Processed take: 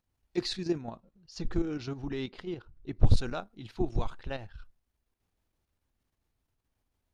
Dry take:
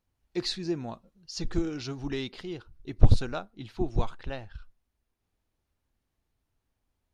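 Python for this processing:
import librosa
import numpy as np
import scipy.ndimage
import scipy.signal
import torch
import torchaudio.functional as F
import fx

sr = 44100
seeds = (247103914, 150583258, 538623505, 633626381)

y = fx.high_shelf(x, sr, hz=3600.0, db=-10.5, at=(0.81, 3.03))
y = fx.level_steps(y, sr, step_db=9)
y = y * librosa.db_to_amplitude(2.5)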